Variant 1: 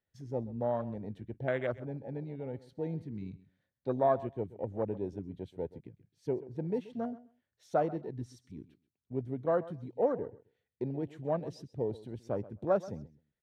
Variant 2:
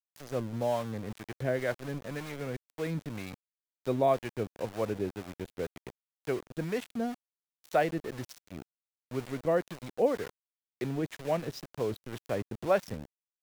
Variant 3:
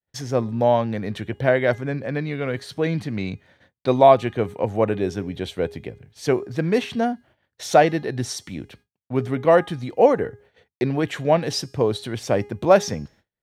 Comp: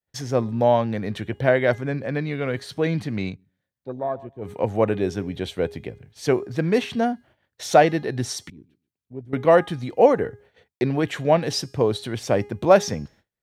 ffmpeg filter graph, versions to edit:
-filter_complex "[0:a]asplit=2[a][b];[2:a]asplit=3[c][d][e];[c]atrim=end=3.38[f];[a]atrim=start=3.28:end=4.51[g];[d]atrim=start=4.41:end=8.502[h];[b]atrim=start=8.498:end=9.332[i];[e]atrim=start=9.328[j];[f][g]acrossfade=d=0.1:c1=tri:c2=tri[k];[k][h]acrossfade=d=0.1:c1=tri:c2=tri[l];[l][i]acrossfade=d=0.004:c1=hsin:c2=hsin[m];[m][j]acrossfade=d=0.004:c1=hsin:c2=hsin"

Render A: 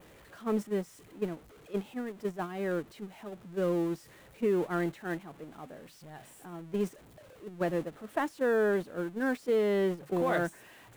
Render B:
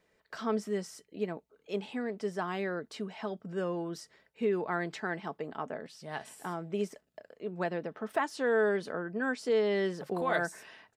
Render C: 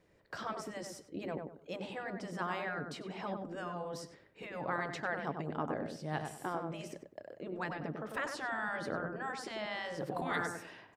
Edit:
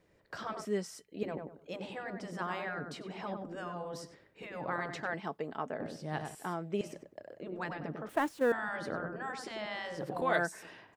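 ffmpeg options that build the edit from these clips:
-filter_complex "[1:a]asplit=4[a][b][c][d];[2:a]asplit=6[e][f][g][h][i][j];[e]atrim=end=0.652[k];[a]atrim=start=0.648:end=1.232[l];[f]atrim=start=1.228:end=5.142[m];[b]atrim=start=5.138:end=5.802[n];[g]atrim=start=5.798:end=6.352[o];[c]atrim=start=6.348:end=6.812[p];[h]atrim=start=6.808:end=8.092[q];[0:a]atrim=start=8.088:end=8.522[r];[i]atrim=start=8.518:end=10.222[s];[d]atrim=start=10.218:end=10.632[t];[j]atrim=start=10.628[u];[k][l]acrossfade=d=0.004:c1=hsin:c2=hsin[v];[v][m]acrossfade=d=0.004:c1=hsin:c2=hsin[w];[w][n]acrossfade=d=0.004:c1=hsin:c2=hsin[x];[x][o]acrossfade=d=0.004:c1=hsin:c2=hsin[y];[y][p]acrossfade=d=0.004:c1=hsin:c2=hsin[z];[z][q]acrossfade=d=0.004:c1=hsin:c2=hsin[aa];[aa][r]acrossfade=d=0.004:c1=hsin:c2=hsin[ab];[ab][s]acrossfade=d=0.004:c1=hsin:c2=hsin[ac];[ac][t]acrossfade=d=0.004:c1=hsin:c2=hsin[ad];[ad][u]acrossfade=d=0.004:c1=hsin:c2=hsin"

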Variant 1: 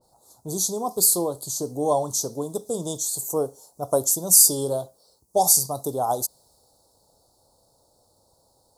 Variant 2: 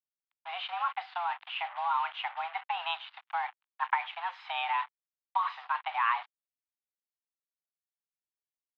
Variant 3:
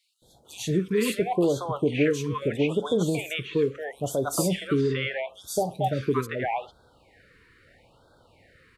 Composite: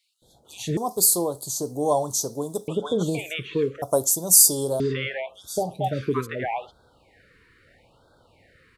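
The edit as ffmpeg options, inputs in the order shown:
-filter_complex "[0:a]asplit=2[a][b];[2:a]asplit=3[c][d][e];[c]atrim=end=0.772[f];[a]atrim=start=0.768:end=2.682[g];[d]atrim=start=2.678:end=3.822[h];[b]atrim=start=3.818:end=4.802[i];[e]atrim=start=4.798[j];[f][g]acrossfade=d=0.004:c1=hsin:c2=hsin[k];[k][h]acrossfade=d=0.004:c1=hsin:c2=hsin[l];[l][i]acrossfade=d=0.004:c1=hsin:c2=hsin[m];[m][j]acrossfade=d=0.004:c1=hsin:c2=hsin"

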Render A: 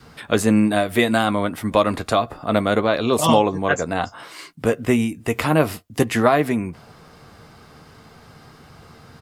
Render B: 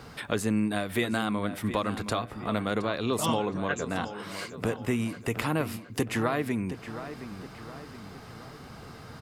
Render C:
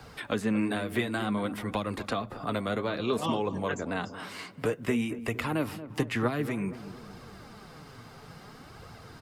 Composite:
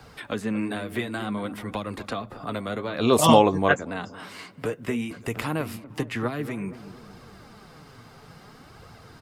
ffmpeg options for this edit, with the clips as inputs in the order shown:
-filter_complex "[2:a]asplit=3[a][b][c];[a]atrim=end=3.03[d];[0:a]atrim=start=2.93:end=3.81[e];[b]atrim=start=3.71:end=5.112[f];[1:a]atrim=start=5.108:end=5.842[g];[c]atrim=start=5.838[h];[d][e]acrossfade=d=0.1:c1=tri:c2=tri[i];[i][f]acrossfade=d=0.1:c1=tri:c2=tri[j];[j][g]acrossfade=d=0.004:c1=hsin:c2=hsin[k];[k][h]acrossfade=d=0.004:c1=hsin:c2=hsin"

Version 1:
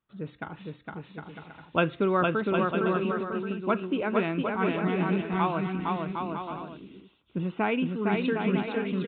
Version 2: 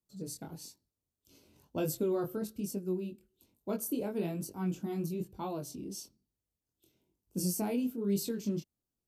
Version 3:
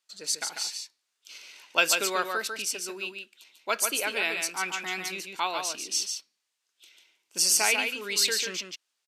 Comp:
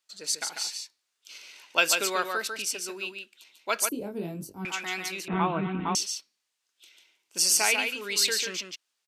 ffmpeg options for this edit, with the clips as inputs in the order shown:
-filter_complex "[2:a]asplit=3[a][b][c];[a]atrim=end=3.892[d];[1:a]atrim=start=3.888:end=4.652[e];[b]atrim=start=4.648:end=5.282[f];[0:a]atrim=start=5.278:end=5.952[g];[c]atrim=start=5.948[h];[d][e]acrossfade=d=0.004:c1=hsin:c2=hsin[i];[i][f]acrossfade=d=0.004:c1=hsin:c2=hsin[j];[j][g]acrossfade=d=0.004:c1=hsin:c2=hsin[k];[k][h]acrossfade=d=0.004:c1=hsin:c2=hsin"

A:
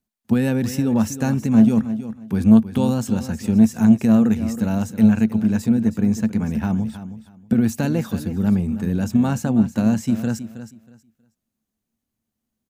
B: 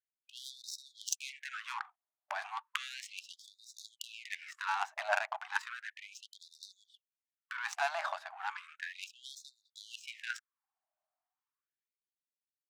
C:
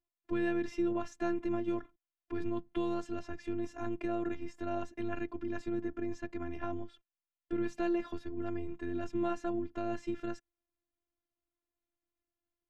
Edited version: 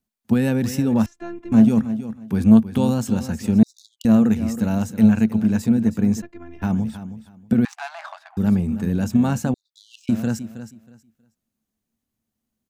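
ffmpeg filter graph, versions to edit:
-filter_complex "[2:a]asplit=2[a][b];[1:a]asplit=3[c][d][e];[0:a]asplit=6[f][g][h][i][j][k];[f]atrim=end=1.062[l];[a]atrim=start=1.058:end=1.522[m];[g]atrim=start=1.518:end=3.632[n];[c]atrim=start=3.628:end=4.052[o];[h]atrim=start=4.048:end=6.222[p];[b]atrim=start=6.218:end=6.622[q];[i]atrim=start=6.618:end=7.652[r];[d]atrim=start=7.648:end=8.372[s];[j]atrim=start=8.368:end=9.542[t];[e]atrim=start=9.538:end=10.092[u];[k]atrim=start=10.088[v];[l][m]acrossfade=d=0.004:c1=hsin:c2=hsin[w];[w][n]acrossfade=d=0.004:c1=hsin:c2=hsin[x];[x][o]acrossfade=d=0.004:c1=hsin:c2=hsin[y];[y][p]acrossfade=d=0.004:c1=hsin:c2=hsin[z];[z][q]acrossfade=d=0.004:c1=hsin:c2=hsin[aa];[aa][r]acrossfade=d=0.004:c1=hsin:c2=hsin[ab];[ab][s]acrossfade=d=0.004:c1=hsin:c2=hsin[ac];[ac][t]acrossfade=d=0.004:c1=hsin:c2=hsin[ad];[ad][u]acrossfade=d=0.004:c1=hsin:c2=hsin[ae];[ae][v]acrossfade=d=0.004:c1=hsin:c2=hsin"

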